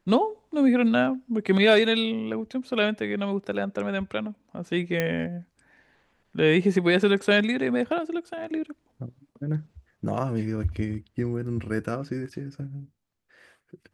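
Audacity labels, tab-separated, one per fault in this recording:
5.000000	5.000000	pop -11 dBFS

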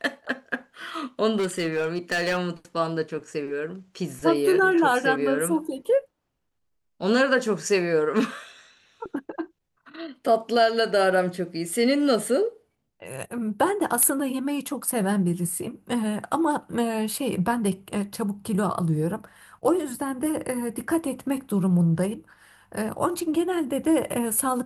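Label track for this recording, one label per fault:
1.370000	2.390000	clipped -20.5 dBFS

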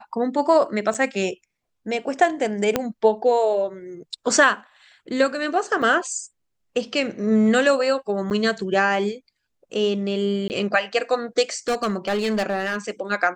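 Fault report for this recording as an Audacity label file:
0.940000	0.950000	dropout 6 ms
2.760000	2.760000	pop -5 dBFS
5.820000	5.820000	dropout 4 ms
8.300000	8.310000	dropout 8.5 ms
10.480000	10.500000	dropout 19 ms
11.680000	12.760000	clipped -18.5 dBFS

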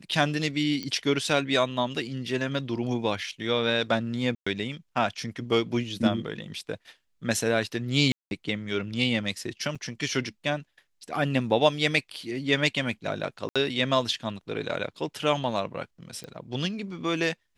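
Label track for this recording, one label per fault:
0.830000	0.830000	pop -20 dBFS
4.350000	4.460000	dropout 115 ms
8.120000	8.310000	dropout 191 ms
9.750000	9.760000	dropout 5.8 ms
13.490000	13.560000	dropout 66 ms
16.240000	16.240000	pop -26 dBFS

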